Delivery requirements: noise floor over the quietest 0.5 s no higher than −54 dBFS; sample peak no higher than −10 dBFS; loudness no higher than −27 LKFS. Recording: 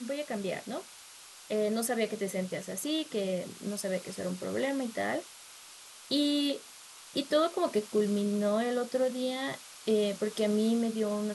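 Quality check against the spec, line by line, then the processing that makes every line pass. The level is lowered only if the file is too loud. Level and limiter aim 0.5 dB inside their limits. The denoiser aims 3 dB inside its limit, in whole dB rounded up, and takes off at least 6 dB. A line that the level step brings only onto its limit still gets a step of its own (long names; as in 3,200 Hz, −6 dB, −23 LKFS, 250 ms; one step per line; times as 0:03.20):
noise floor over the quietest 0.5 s −51 dBFS: out of spec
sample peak −14.5 dBFS: in spec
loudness −31.5 LKFS: in spec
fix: broadband denoise 6 dB, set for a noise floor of −51 dBFS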